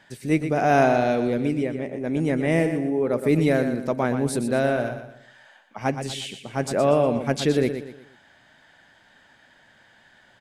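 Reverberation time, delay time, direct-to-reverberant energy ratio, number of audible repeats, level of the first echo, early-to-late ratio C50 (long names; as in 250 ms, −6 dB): no reverb audible, 120 ms, no reverb audible, 4, −9.0 dB, no reverb audible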